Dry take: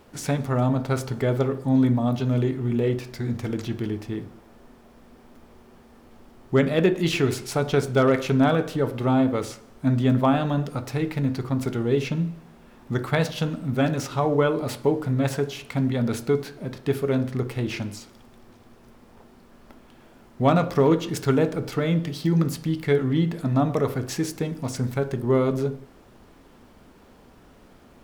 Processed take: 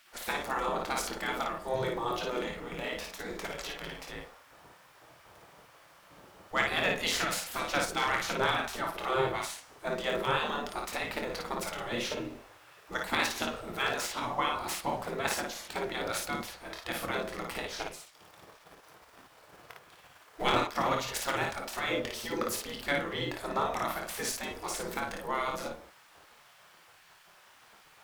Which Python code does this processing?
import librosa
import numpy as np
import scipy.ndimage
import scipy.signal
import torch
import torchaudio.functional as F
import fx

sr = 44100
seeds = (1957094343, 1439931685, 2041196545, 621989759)

y = fx.transient(x, sr, attack_db=8, sustain_db=-6, at=(17.65, 20.74), fade=0.02)
y = fx.spec_gate(y, sr, threshold_db=-15, keep='weak')
y = fx.room_early_taps(y, sr, ms=(25, 55), db=(-8.0, -3.5))
y = y * 10.0 ** (1.0 / 20.0)